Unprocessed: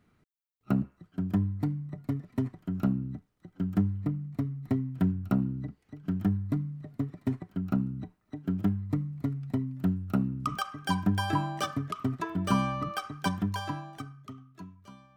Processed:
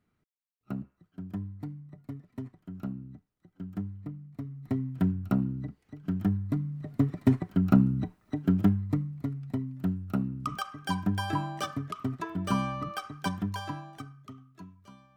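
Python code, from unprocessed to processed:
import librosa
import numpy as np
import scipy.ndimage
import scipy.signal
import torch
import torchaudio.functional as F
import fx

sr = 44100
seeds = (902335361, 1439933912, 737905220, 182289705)

y = fx.gain(x, sr, db=fx.line((4.33, -9.0), (4.84, 0.0), (6.58, 0.0), (7.07, 7.5), (8.36, 7.5), (9.24, -2.0)))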